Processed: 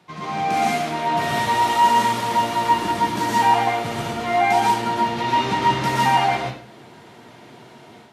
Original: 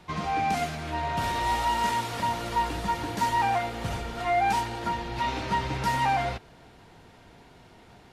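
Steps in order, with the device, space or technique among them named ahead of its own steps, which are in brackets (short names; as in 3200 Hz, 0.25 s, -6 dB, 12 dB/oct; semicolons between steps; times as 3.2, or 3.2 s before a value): far laptop microphone (reverb RT60 0.50 s, pre-delay 0.113 s, DRR -4 dB; HPF 120 Hz 24 dB/oct; AGC gain up to 6.5 dB); gain -3 dB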